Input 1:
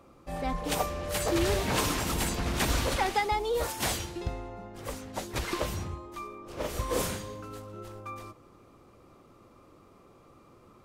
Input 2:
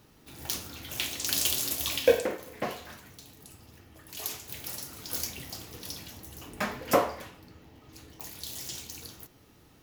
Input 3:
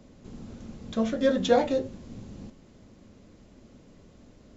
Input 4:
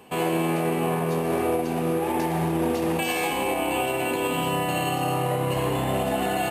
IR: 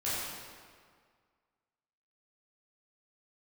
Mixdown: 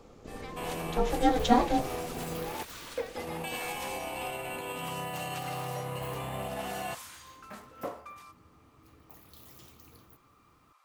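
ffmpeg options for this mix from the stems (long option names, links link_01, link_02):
-filter_complex "[0:a]highpass=frequency=930:width=0.5412,highpass=frequency=930:width=1.3066,acompressor=threshold=-41dB:ratio=6,volume=-2.5dB[link_01];[1:a]equalizer=frequency=6300:width_type=o:width=2.4:gain=-14.5,adelay=900,volume=-7dB,afade=type=in:start_time=8.11:duration=0.38:silence=0.473151[link_02];[2:a]aeval=exprs='val(0)*sin(2*PI*250*n/s)':channel_layout=same,volume=2dB,asplit=2[link_03][link_04];[3:a]equalizer=frequency=310:width_type=o:width=0.82:gain=-8.5,adelay=450,volume=-10dB,asplit=3[link_05][link_06][link_07];[link_05]atrim=end=2.63,asetpts=PTS-STARTPTS,afade=type=out:start_time=2.626:duration=0.004:curve=hsin[link_08];[link_06]atrim=start=2.63:end=3.17,asetpts=PTS-STARTPTS,volume=0[link_09];[link_07]atrim=start=3.17,asetpts=PTS-STARTPTS,afade=type=in:duration=0.004:curve=hsin[link_10];[link_08][link_09][link_10]concat=n=3:v=0:a=1[link_11];[link_04]apad=whole_len=306772[link_12];[link_11][link_12]sidechaincompress=threshold=-29dB:ratio=8:attack=16:release=171[link_13];[link_01][link_02][link_03][link_13]amix=inputs=4:normalize=0"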